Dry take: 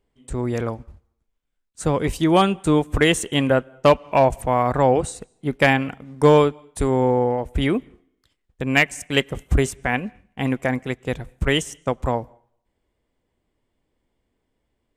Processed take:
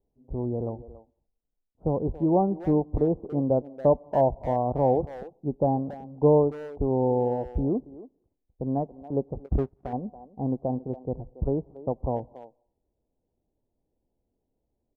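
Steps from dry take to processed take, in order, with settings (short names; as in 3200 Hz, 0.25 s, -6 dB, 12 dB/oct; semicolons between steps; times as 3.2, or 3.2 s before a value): steep low-pass 870 Hz 48 dB/oct; speakerphone echo 0.28 s, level -15 dB; 9.46–9.93 power-law curve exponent 1.4; gain -5 dB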